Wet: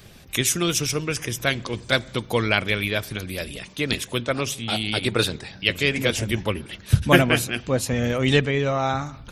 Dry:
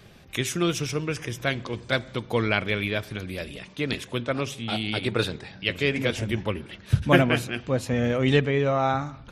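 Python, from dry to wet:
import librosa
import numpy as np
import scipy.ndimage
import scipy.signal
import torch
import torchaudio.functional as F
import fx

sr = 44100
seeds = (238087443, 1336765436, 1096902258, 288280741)

y = fx.low_shelf(x, sr, hz=110.0, db=5.5)
y = fx.hpss(y, sr, part='harmonic', gain_db=-4)
y = fx.high_shelf(y, sr, hz=5000.0, db=11.5)
y = F.gain(torch.from_numpy(y), 3.0).numpy()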